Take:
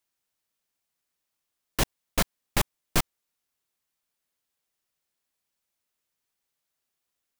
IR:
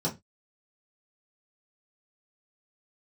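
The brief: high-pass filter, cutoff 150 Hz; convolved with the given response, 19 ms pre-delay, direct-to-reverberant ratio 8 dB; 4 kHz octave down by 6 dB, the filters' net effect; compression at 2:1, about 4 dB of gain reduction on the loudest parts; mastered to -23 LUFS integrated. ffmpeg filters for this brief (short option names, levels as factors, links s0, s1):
-filter_complex "[0:a]highpass=150,equalizer=f=4000:t=o:g=-8,acompressor=threshold=0.0355:ratio=2,asplit=2[s0][s1];[1:a]atrim=start_sample=2205,adelay=19[s2];[s1][s2]afir=irnorm=-1:irlink=0,volume=0.178[s3];[s0][s3]amix=inputs=2:normalize=0,volume=3.55"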